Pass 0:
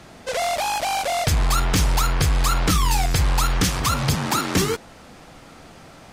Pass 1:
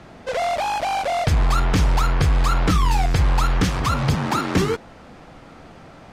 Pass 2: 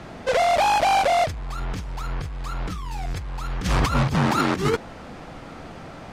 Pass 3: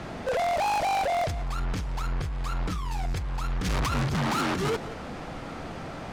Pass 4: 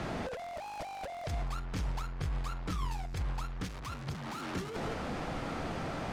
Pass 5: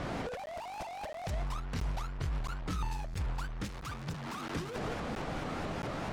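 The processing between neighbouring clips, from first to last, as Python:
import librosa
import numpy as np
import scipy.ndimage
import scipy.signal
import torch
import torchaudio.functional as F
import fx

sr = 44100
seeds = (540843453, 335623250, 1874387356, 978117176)

y1 = fx.lowpass(x, sr, hz=2100.0, slope=6)
y1 = y1 * 10.0 ** (2.0 / 20.0)
y2 = fx.over_compress(y1, sr, threshold_db=-22.0, ratio=-0.5)
y3 = y2 + 10.0 ** (-22.5 / 20.0) * np.pad(y2, (int(180 * sr / 1000.0), 0))[:len(y2)]
y3 = 10.0 ** (-26.0 / 20.0) * np.tanh(y3 / 10.0 ** (-26.0 / 20.0))
y3 = y3 * 10.0 ** (2.0 / 20.0)
y4 = fx.over_compress(y3, sr, threshold_db=-31.0, ratio=-0.5)
y4 = y4 * 10.0 ** (-4.0 / 20.0)
y5 = fx.buffer_crackle(y4, sr, first_s=0.46, period_s=0.67, block=512, kind='zero')
y5 = fx.vibrato_shape(y5, sr, shape='saw_up', rate_hz=4.6, depth_cents=250.0)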